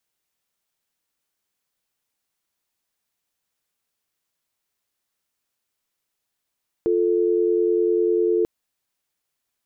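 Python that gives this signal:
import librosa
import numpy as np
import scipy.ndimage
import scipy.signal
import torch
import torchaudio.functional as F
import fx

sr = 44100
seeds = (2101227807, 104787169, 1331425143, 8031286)

y = fx.call_progress(sr, length_s=1.59, kind='dial tone', level_db=-19.5)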